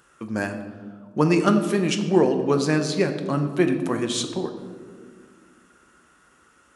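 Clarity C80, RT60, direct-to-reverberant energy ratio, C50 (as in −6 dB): 10.0 dB, 1.8 s, 6.0 dB, 8.5 dB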